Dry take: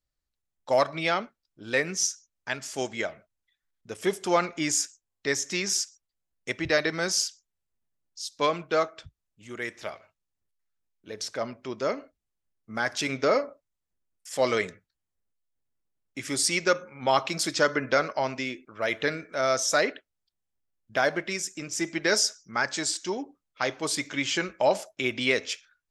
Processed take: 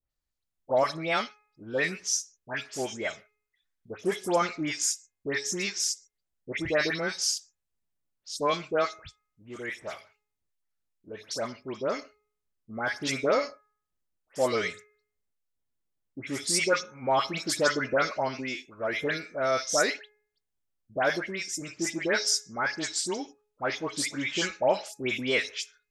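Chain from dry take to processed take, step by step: de-hum 420.1 Hz, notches 6; dispersion highs, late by 0.111 s, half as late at 2000 Hz; gain -1.5 dB

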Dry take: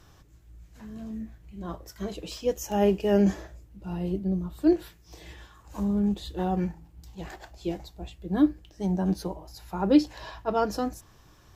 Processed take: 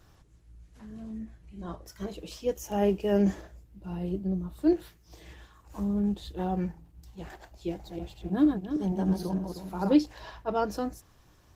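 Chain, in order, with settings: 7.68–9.94 regenerating reverse delay 0.155 s, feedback 53%, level -4 dB; gain -2.5 dB; Opus 20 kbps 48000 Hz

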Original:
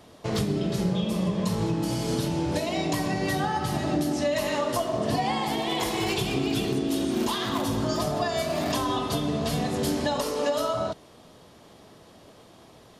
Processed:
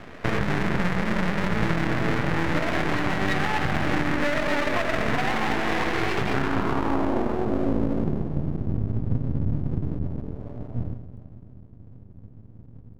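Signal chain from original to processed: half-waves squared off; low-pass sweep 1900 Hz -> 110 Hz, 6.28–8.58; compressor, threshold -25 dBFS, peak gain reduction 10 dB; split-band echo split 310 Hz, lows 0.184 s, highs 0.258 s, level -11 dB; half-wave rectifier; gain +7 dB

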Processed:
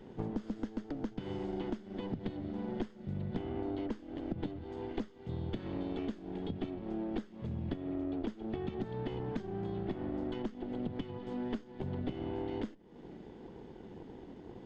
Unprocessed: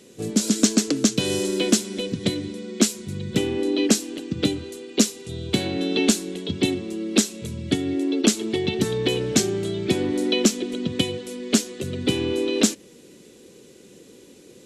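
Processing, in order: minimum comb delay 0.62 ms; compressor 12:1, threshold -35 dBFS, peak gain reduction 23 dB; tape spacing loss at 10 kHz 44 dB; gain +2.5 dB

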